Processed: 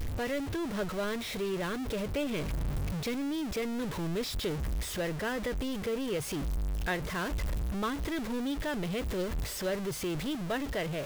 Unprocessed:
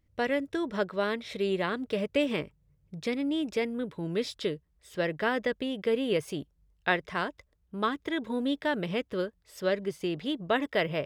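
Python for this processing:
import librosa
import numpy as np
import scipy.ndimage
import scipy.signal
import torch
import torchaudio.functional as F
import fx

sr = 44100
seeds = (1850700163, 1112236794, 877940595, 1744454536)

y = x + 0.5 * 10.0 ** (-25.5 / 20.0) * np.sign(x)
y = fx.low_shelf(y, sr, hz=92.0, db=11.5)
y = fx.rider(y, sr, range_db=10, speed_s=0.5)
y = y * 10.0 ** (-8.5 / 20.0)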